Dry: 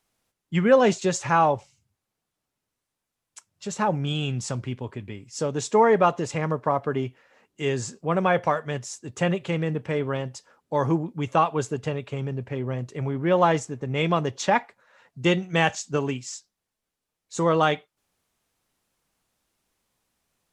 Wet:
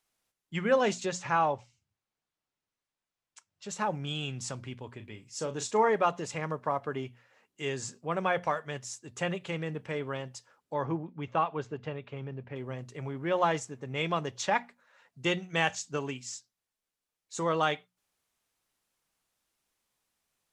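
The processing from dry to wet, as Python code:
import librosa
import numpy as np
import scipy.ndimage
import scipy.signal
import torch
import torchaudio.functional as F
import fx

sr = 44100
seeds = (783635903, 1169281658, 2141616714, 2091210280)

y = fx.air_absorb(x, sr, metres=62.0, at=(1.06, 3.69))
y = fx.doubler(y, sr, ms=37.0, db=-10, at=(4.96, 5.89))
y = fx.air_absorb(y, sr, metres=230.0, at=(10.74, 12.56))
y = fx.tilt_shelf(y, sr, db=-3.0, hz=750.0)
y = fx.hum_notches(y, sr, base_hz=60, count=4)
y = F.gain(torch.from_numpy(y), -7.0).numpy()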